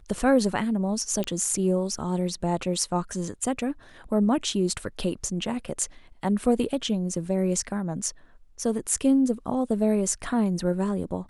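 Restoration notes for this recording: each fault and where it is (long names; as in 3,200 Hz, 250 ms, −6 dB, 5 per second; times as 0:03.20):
0:01.24: click −14 dBFS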